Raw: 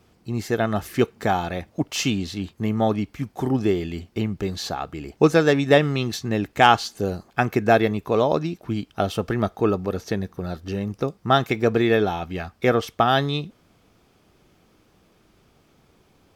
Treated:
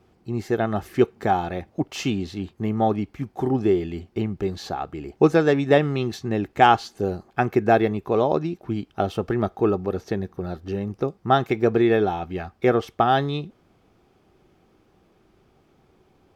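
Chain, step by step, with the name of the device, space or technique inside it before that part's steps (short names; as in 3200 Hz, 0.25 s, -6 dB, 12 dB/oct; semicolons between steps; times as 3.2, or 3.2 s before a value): inside a helmet (high shelf 3300 Hz -8.5 dB; small resonant body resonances 370/780 Hz, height 6 dB); gain -1.5 dB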